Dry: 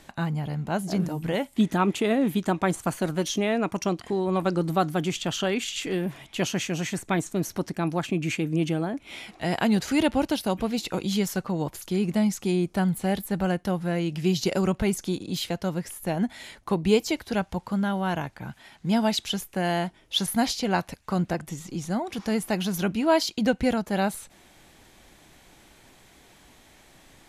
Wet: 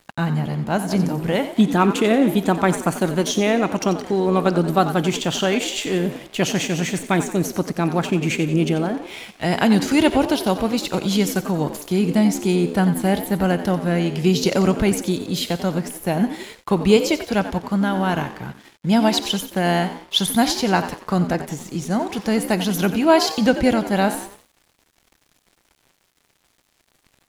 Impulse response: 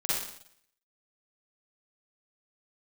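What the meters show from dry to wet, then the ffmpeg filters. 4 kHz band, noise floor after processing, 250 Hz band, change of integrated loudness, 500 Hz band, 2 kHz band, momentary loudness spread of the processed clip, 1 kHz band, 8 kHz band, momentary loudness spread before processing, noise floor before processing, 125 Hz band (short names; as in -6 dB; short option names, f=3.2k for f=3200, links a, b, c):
+6.5 dB, -64 dBFS, +6.5 dB, +6.5 dB, +6.5 dB, +6.5 dB, 7 LU, +7.0 dB, +6.0 dB, 7 LU, -56 dBFS, +6.0 dB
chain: -filter_complex "[0:a]asplit=6[a][b][c][d][e][f];[b]adelay=90,afreqshift=70,volume=-12dB[g];[c]adelay=180,afreqshift=140,volume=-18.7dB[h];[d]adelay=270,afreqshift=210,volume=-25.5dB[i];[e]adelay=360,afreqshift=280,volume=-32.2dB[j];[f]adelay=450,afreqshift=350,volume=-39dB[k];[a][g][h][i][j][k]amix=inputs=6:normalize=0,asplit=2[l][m];[1:a]atrim=start_sample=2205[n];[m][n]afir=irnorm=-1:irlink=0,volume=-23.5dB[o];[l][o]amix=inputs=2:normalize=0,aeval=exprs='sgn(val(0))*max(abs(val(0))-0.00376,0)':c=same,volume=6dB"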